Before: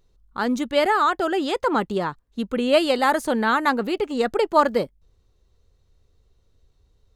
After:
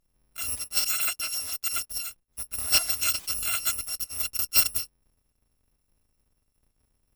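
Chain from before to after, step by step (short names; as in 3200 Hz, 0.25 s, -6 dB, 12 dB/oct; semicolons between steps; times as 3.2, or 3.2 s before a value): FFT order left unsorted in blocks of 256 samples; 0.59–1.91 low shelf 140 Hz -7.5 dB; added harmonics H 3 -13 dB, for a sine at -4.5 dBFS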